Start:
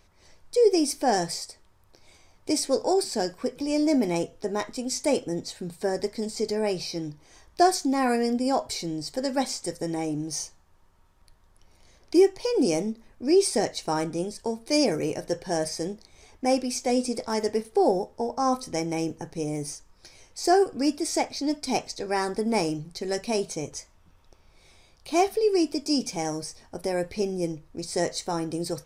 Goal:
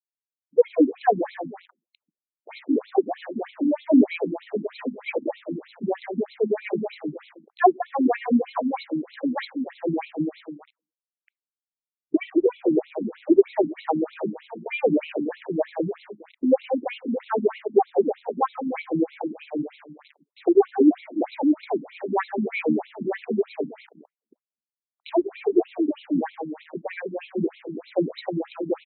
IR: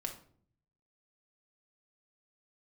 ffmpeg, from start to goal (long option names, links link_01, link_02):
-filter_complex "[0:a]acrossover=split=3200[link_01][link_02];[link_02]acompressor=threshold=-37dB:ratio=4:attack=1:release=60[link_03];[link_01][link_03]amix=inputs=2:normalize=0,asplit=2[link_04][link_05];[link_05]adelay=202,lowpass=frequency=870:poles=1,volume=-5.5dB,asplit=2[link_06][link_07];[link_07]adelay=202,lowpass=frequency=870:poles=1,volume=0.32,asplit=2[link_08][link_09];[link_09]adelay=202,lowpass=frequency=870:poles=1,volume=0.32,asplit=2[link_10][link_11];[link_11]adelay=202,lowpass=frequency=870:poles=1,volume=0.32[link_12];[link_06][link_08][link_10][link_12]amix=inputs=4:normalize=0[link_13];[link_04][link_13]amix=inputs=2:normalize=0,aeval=exprs='val(0)*gte(abs(val(0)),0.00794)':channel_layout=same,asplit=2[link_14][link_15];[1:a]atrim=start_sample=2205,asetrate=79380,aresample=44100[link_16];[link_15][link_16]afir=irnorm=-1:irlink=0,volume=-16dB[link_17];[link_14][link_17]amix=inputs=2:normalize=0,afftfilt=real='re*between(b*sr/1024,220*pow(3000/220,0.5+0.5*sin(2*PI*3.2*pts/sr))/1.41,220*pow(3000/220,0.5+0.5*sin(2*PI*3.2*pts/sr))*1.41)':imag='im*between(b*sr/1024,220*pow(3000/220,0.5+0.5*sin(2*PI*3.2*pts/sr))/1.41,220*pow(3000/220,0.5+0.5*sin(2*PI*3.2*pts/sr))*1.41)':win_size=1024:overlap=0.75,volume=7.5dB"